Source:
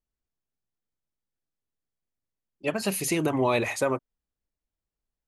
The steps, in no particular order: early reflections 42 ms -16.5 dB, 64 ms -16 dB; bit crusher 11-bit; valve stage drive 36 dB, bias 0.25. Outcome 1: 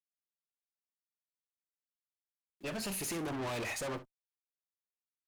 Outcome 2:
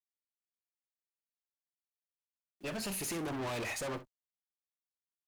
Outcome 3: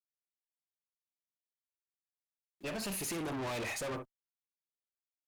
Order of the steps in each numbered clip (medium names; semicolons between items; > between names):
bit crusher > valve stage > early reflections; valve stage > bit crusher > early reflections; bit crusher > early reflections > valve stage